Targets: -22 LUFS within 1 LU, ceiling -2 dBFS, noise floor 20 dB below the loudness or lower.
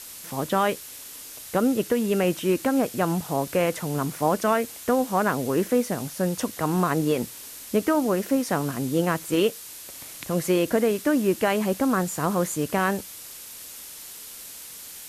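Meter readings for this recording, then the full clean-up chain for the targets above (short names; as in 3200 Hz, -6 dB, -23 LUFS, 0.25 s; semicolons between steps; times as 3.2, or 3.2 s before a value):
noise floor -41 dBFS; noise floor target -45 dBFS; loudness -24.5 LUFS; peak -10.0 dBFS; loudness target -22.0 LUFS
-> denoiser 6 dB, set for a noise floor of -41 dBFS; gain +2.5 dB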